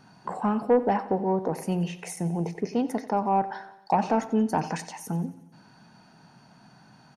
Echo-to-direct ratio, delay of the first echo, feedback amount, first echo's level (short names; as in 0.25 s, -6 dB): -15.0 dB, 90 ms, 55%, -16.5 dB